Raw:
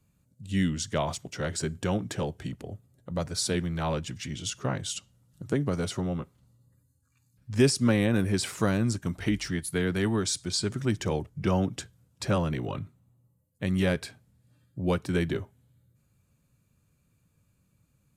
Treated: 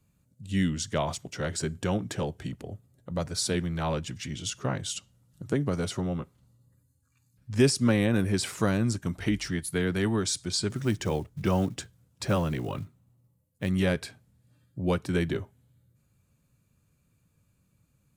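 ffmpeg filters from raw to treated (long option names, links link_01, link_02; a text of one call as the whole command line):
ffmpeg -i in.wav -filter_complex "[0:a]asettb=1/sr,asplit=3[link_01][link_02][link_03];[link_01]atrim=end=10.704[link_04];[link_02]atrim=start=10.7:end=13.69,asetpts=PTS-STARTPTS,afade=type=in:duration=0.004:curve=qsin,afade=type=out:start_time=2.986:duration=0.004:curve=qsin,acrusher=bits=7:mode=log:mix=0:aa=0.000001[link_05];[link_03]atrim=start=13.686[link_06];[link_04][link_05]acrossfade=duration=0.004:curve1=hsin:curve2=qsin[link_07];[link_07][link_06]acrossfade=duration=0.004:curve1=qsin:curve2=hsin" out.wav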